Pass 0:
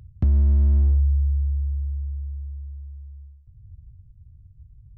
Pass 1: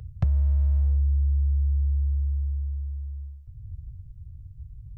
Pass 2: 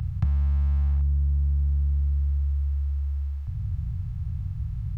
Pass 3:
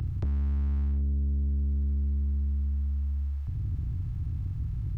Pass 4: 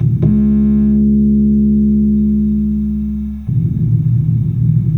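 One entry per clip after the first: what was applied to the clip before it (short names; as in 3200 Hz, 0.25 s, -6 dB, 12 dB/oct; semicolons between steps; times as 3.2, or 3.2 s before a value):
elliptic band-stop 170–440 Hz; compressor 6:1, threshold -27 dBFS, peak gain reduction 10.5 dB; gain +6.5 dB
per-bin compression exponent 0.4; band shelf 500 Hz -11 dB 1 oct; gain -2 dB
soft clip -24 dBFS, distortion -14 dB
added noise blue -66 dBFS; reverb RT60 0.15 s, pre-delay 3 ms, DRR -1.5 dB; gain +2.5 dB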